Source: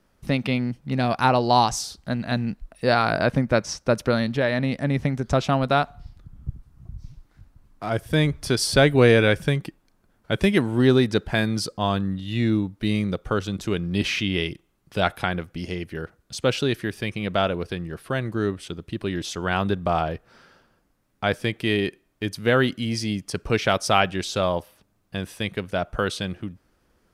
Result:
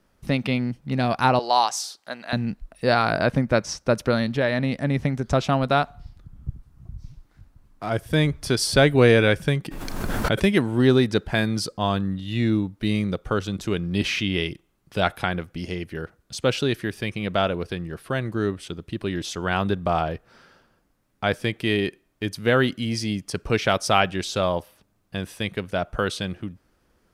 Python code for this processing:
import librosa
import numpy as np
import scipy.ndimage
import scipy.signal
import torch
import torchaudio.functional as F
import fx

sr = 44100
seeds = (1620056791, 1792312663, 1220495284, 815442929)

y = fx.highpass(x, sr, hz=580.0, slope=12, at=(1.39, 2.33))
y = fx.pre_swell(y, sr, db_per_s=24.0, at=(9.66, 10.43))